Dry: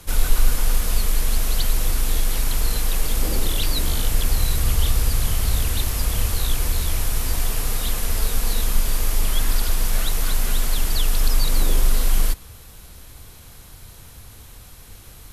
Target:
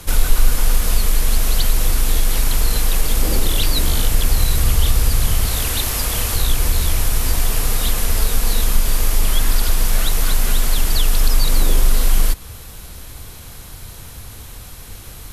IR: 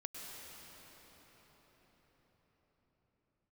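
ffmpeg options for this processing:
-filter_complex "[0:a]asettb=1/sr,asplit=3[link_01][link_02][link_03];[link_01]atrim=end=5.464[link_04];[link_02]atrim=start=5.46:end=6.36,asetpts=PTS-STARTPTS,afade=type=in:duration=0.004:curve=qsin,afade=type=out:start_time=0.896:duration=0.004:curve=qsin,lowshelf=frequency=220:gain=-8[link_05];[link_03]atrim=start=6.356[link_06];[link_04][link_05]acrossfade=duration=0.004:curve1=hsin:curve2=qsin[link_07];[link_07][link_06]acrossfade=duration=0.004:curve1=qsin:curve2=hsin,asplit=2[link_08][link_09];[link_09]acompressor=threshold=-22dB:ratio=6,volume=0.5dB[link_10];[link_08][link_10]amix=inputs=2:normalize=0,volume=1dB"

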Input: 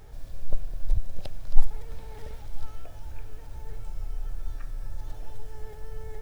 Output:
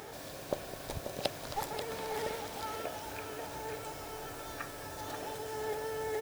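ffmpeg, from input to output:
ffmpeg -i in.wav -af "highpass=280,aecho=1:1:536:0.376,volume=11.5dB" out.wav

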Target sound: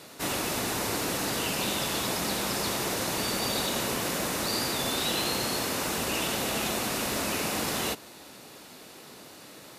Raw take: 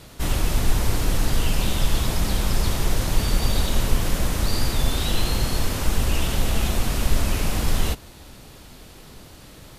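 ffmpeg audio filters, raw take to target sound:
ffmpeg -i in.wav -af "highpass=250,bandreject=frequency=3200:width=19" out.wav

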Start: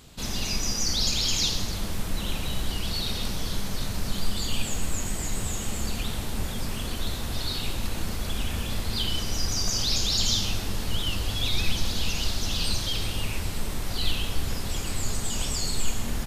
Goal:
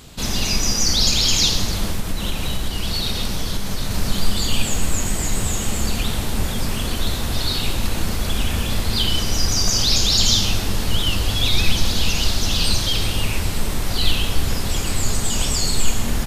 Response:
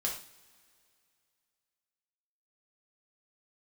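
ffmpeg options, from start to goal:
-filter_complex "[0:a]asettb=1/sr,asplit=3[link_01][link_02][link_03];[link_01]atrim=end=1.904[link_04];[link_02]atrim=start=1.9:end=3.91,asetpts=PTS-STARTPTS,afade=type=in:duration=0.004:curve=qsin,afade=type=out:start_time=2.006:duration=0.004:curve=qsin,acompressor=threshold=-25dB:ratio=6[link_05];[link_03]atrim=start=3.906[link_06];[link_04][link_05]acrossfade=duration=0.004:curve1=hsin:curve2=qsin[link_07];[link_07][link_06]acrossfade=duration=0.004:curve1=qsin:curve2=hsin,volume=8dB"

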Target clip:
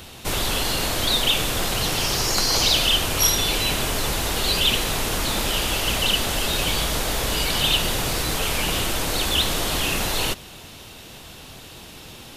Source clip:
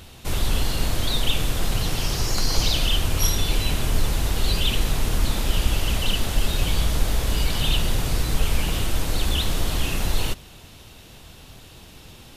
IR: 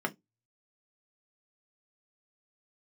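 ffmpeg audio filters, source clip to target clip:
-filter_complex "[0:a]lowshelf=frequency=120:gain=-9.5,acrossover=split=340|4700[link_01][link_02][link_03];[link_01]alimiter=level_in=3.5dB:limit=-24dB:level=0:latency=1:release=88,volume=-3.5dB[link_04];[link_04][link_02][link_03]amix=inputs=3:normalize=0,volume=6dB"

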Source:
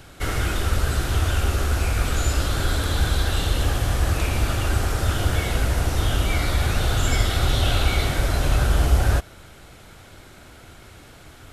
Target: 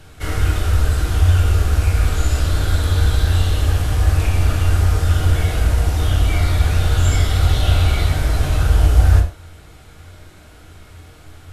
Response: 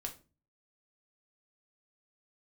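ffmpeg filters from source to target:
-filter_complex "[0:a]equalizer=frequency=81:width_type=o:width=0.31:gain=13.5[link_01];[1:a]atrim=start_sample=2205,atrim=end_sample=4410,asetrate=28224,aresample=44100[link_02];[link_01][link_02]afir=irnorm=-1:irlink=0,volume=-1dB"

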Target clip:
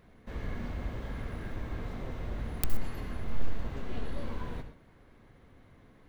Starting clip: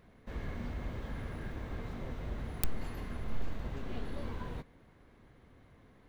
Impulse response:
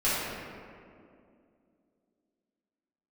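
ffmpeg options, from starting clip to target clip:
-filter_complex "[0:a]asplit=2[link_01][link_02];[1:a]atrim=start_sample=2205,atrim=end_sample=3087,adelay=63[link_03];[link_02][link_03]afir=irnorm=-1:irlink=0,volume=-17dB[link_04];[link_01][link_04]amix=inputs=2:normalize=0,volume=1.5dB"

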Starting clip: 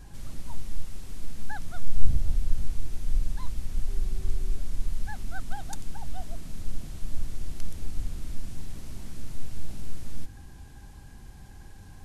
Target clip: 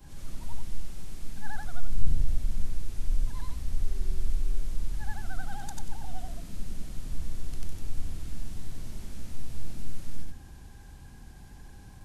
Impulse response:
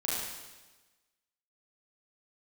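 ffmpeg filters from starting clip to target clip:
-af "afftfilt=real='re':imag='-im':win_size=8192:overlap=0.75,acontrast=33,volume=-2dB"

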